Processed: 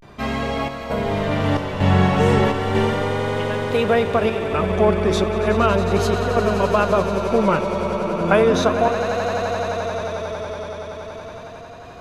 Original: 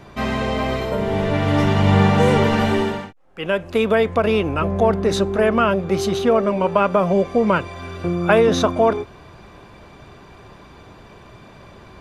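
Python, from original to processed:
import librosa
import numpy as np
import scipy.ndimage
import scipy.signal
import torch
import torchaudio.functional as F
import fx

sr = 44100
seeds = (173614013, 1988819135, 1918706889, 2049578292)

y = fx.chopper(x, sr, hz=1.1, depth_pct=65, duty_pct=75)
y = fx.echo_swell(y, sr, ms=90, loudest=8, wet_db=-13.5)
y = fx.vibrato(y, sr, rate_hz=0.35, depth_cents=87.0)
y = y * 10.0 ** (-1.5 / 20.0)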